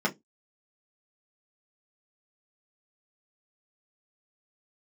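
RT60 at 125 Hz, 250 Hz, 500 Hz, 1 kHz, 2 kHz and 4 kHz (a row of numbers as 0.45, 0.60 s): 0.20, 0.25, 0.20, 0.10, 0.15, 0.15 s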